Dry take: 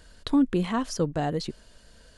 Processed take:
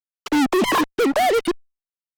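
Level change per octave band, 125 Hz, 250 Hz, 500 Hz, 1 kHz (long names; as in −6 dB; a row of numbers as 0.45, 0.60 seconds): −10.0, +4.0, +10.5, +12.5 decibels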